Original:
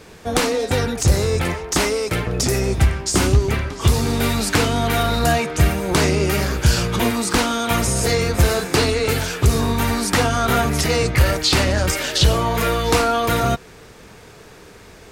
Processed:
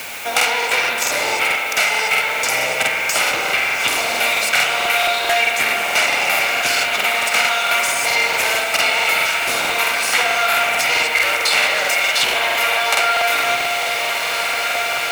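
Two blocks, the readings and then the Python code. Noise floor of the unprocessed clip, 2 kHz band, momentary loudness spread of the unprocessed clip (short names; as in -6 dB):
-43 dBFS, +10.0 dB, 3 LU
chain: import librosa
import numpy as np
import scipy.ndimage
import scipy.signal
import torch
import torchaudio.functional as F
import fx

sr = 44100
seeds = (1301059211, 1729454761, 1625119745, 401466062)

p1 = fx.lower_of_two(x, sr, delay_ms=1.4)
p2 = scipy.signal.sosfilt(scipy.signal.butter(2, 650.0, 'highpass', fs=sr, output='sos'), p1)
p3 = p2 + fx.echo_diffused(p2, sr, ms=1663, feedback_pct=58, wet_db=-11.0, dry=0)
p4 = fx.rev_spring(p3, sr, rt60_s=2.1, pass_ms=(54,), chirp_ms=20, drr_db=1.5)
p5 = fx.rider(p4, sr, range_db=10, speed_s=0.5)
p6 = p4 + F.gain(torch.from_numpy(p5), -2.5).numpy()
p7 = fx.quant_dither(p6, sr, seeds[0], bits=6, dither='triangular')
p8 = fx.peak_eq(p7, sr, hz=2400.0, db=11.5, octaves=0.48)
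p9 = fx.buffer_crackle(p8, sr, first_s=0.36, period_s=0.22, block=2048, kind='repeat')
p10 = fx.band_squash(p9, sr, depth_pct=40)
y = F.gain(torch.from_numpy(p10), -3.0).numpy()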